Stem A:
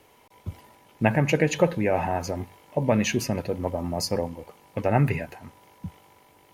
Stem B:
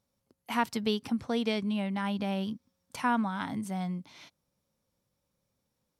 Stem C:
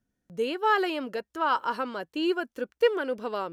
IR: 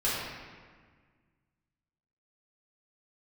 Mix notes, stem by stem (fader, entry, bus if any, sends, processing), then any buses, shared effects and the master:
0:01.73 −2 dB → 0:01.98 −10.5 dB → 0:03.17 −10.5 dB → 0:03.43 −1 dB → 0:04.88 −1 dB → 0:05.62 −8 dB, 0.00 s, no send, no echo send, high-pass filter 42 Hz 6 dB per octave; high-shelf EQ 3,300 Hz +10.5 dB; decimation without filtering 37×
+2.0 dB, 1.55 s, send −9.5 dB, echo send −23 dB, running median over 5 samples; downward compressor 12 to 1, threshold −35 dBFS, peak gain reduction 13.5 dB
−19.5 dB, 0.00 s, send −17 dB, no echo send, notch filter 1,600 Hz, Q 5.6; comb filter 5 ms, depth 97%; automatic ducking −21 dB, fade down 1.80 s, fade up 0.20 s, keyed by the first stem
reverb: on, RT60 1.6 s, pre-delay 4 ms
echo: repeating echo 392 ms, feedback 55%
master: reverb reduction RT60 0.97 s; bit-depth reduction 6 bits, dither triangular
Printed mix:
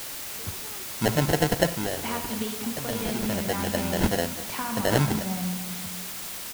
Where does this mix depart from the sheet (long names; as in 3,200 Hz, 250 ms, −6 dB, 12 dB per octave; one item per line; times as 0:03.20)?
stem C: send off
master: missing reverb reduction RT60 0.97 s